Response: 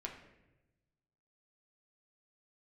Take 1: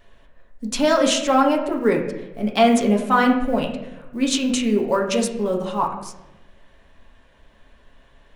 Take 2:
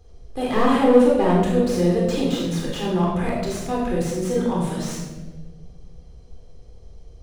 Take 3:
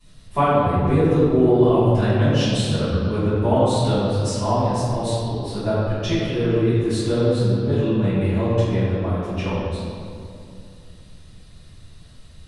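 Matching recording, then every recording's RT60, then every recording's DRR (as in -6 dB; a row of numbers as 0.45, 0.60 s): 1; 1.0, 1.4, 2.5 s; -0.5, -4.0, -18.5 dB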